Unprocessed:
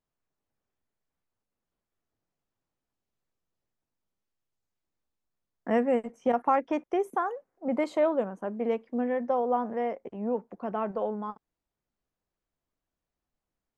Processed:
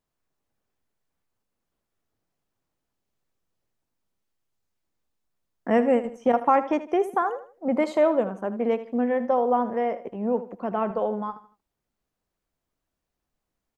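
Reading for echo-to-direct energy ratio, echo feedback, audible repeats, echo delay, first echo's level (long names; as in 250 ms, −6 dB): −13.5 dB, 34%, 3, 78 ms, −14.0 dB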